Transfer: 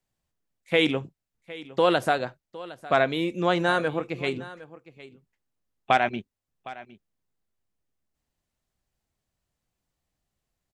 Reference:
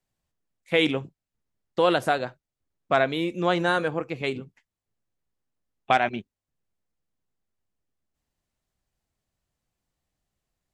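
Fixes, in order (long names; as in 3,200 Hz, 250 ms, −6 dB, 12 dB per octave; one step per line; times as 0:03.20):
echo removal 760 ms −18 dB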